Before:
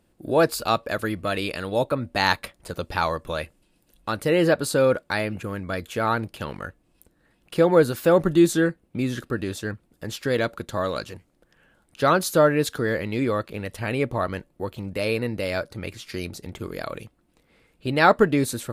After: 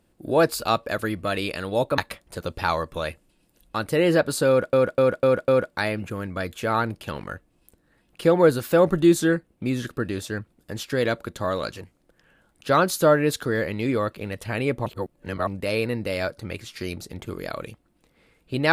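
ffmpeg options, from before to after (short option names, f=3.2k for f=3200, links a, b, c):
-filter_complex "[0:a]asplit=8[a][b][c][d][e][f][g][h];[a]atrim=end=1.982[i];[b]atrim=start=2.308:end=5.062[j];[c]atrim=start=4.808:end=5.062[k];[d]atrim=start=4.808:end=5.062[l];[e]atrim=start=4.808:end=5.062[m];[f]atrim=start=4.808:end=14.192[n];[g]atrim=start=14.188:end=14.802,asetpts=PTS-STARTPTS,areverse[o];[h]atrim=start=14.798[p];[i][j]acrossfade=d=0.004:c1=hsin:c2=hsin[q];[q][k]acrossfade=d=0.004:c1=hsin:c2=hsin[r];[r][l]acrossfade=d=0.004:c1=hsin:c2=hsin[s];[s][m]acrossfade=d=0.004:c1=hsin:c2=hsin[t];[t][n]acrossfade=d=0.004:c1=hsin:c2=hsin[u];[u][o]acrossfade=d=0.004:c1=hsin:c2=hsin[v];[v][p]acrossfade=d=0.004:c1=hsin:c2=hsin"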